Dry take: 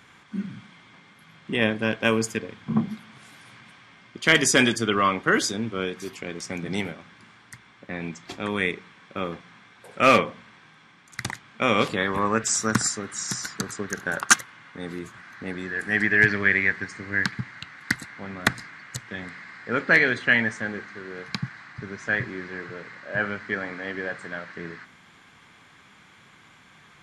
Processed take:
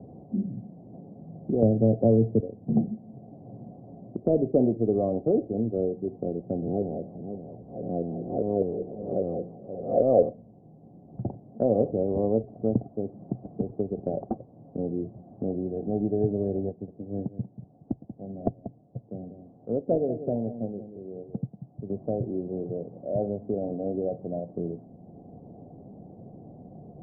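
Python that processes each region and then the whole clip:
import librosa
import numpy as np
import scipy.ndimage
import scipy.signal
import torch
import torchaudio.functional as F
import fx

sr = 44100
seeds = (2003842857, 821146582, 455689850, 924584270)

y = fx.chain(x, sr, fx.peak_eq(hz=110.0, db=11.0, octaves=1.9),
    fx.band_squash(depth_pct=70), at=(1.62, 2.4))
y = fx.chain(y, sr, fx.spec_blur(span_ms=220.0),
    fx.filter_lfo_lowpass(shape='saw_down', hz=5.0, low_hz=420.0, high_hz=2900.0, q=3.9),
    fx.echo_single(ms=528, db=-15.5), at=(6.62, 10.29))
y = fx.chain(y, sr, fx.echo_single(ms=187, db=-9.5),
    fx.upward_expand(threshold_db=-36.0, expansion=1.5), at=(16.69, 21.9))
y = fx.dynamic_eq(y, sr, hz=180.0, q=1.2, threshold_db=-37.0, ratio=4.0, max_db=-5)
y = scipy.signal.sosfilt(scipy.signal.cheby1(6, 1.0, 720.0, 'lowpass', fs=sr, output='sos'), y)
y = fx.band_squash(y, sr, depth_pct=40)
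y = F.gain(torch.from_numpy(y), 5.0).numpy()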